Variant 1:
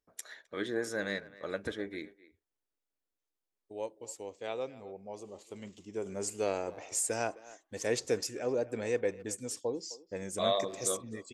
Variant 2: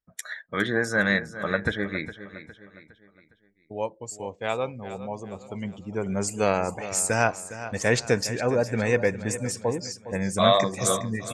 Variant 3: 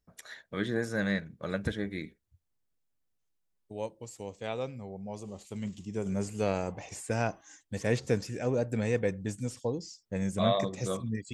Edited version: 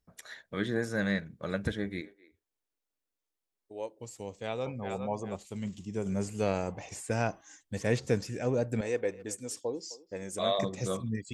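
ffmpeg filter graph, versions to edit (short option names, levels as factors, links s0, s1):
-filter_complex "[0:a]asplit=2[s0][s1];[2:a]asplit=4[s2][s3][s4][s5];[s2]atrim=end=2.012[s6];[s0]atrim=start=2.008:end=3.992[s7];[s3]atrim=start=3.988:end=4.662[s8];[1:a]atrim=start=4.658:end=5.362[s9];[s4]atrim=start=5.358:end=8.812[s10];[s1]atrim=start=8.808:end=10.592[s11];[s5]atrim=start=10.588[s12];[s6][s7]acrossfade=d=0.004:c1=hsin:c2=hsin[s13];[s13][s8]acrossfade=d=0.004:c1=hsin:c2=hsin[s14];[s14][s9]acrossfade=d=0.004:c1=hsin:c2=hsin[s15];[s15][s10]acrossfade=d=0.004:c1=hsin:c2=hsin[s16];[s16][s11]acrossfade=d=0.004:c1=hsin:c2=hsin[s17];[s17][s12]acrossfade=d=0.004:c1=hsin:c2=hsin"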